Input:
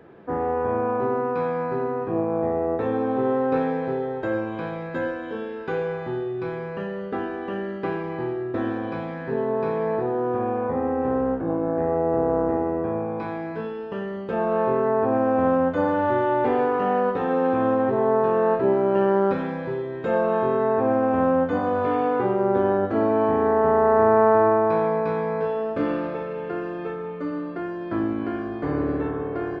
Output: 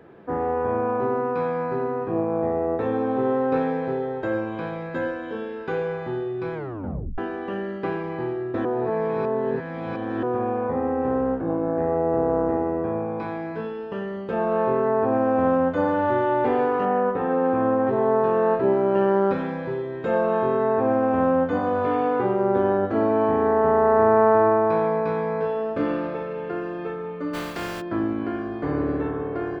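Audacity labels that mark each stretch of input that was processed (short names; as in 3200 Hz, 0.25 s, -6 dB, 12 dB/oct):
6.540000	6.540000	tape stop 0.64 s
8.650000	10.230000	reverse
16.850000	17.870000	LPF 2200 Hz
27.330000	27.800000	spectral contrast lowered exponent 0.43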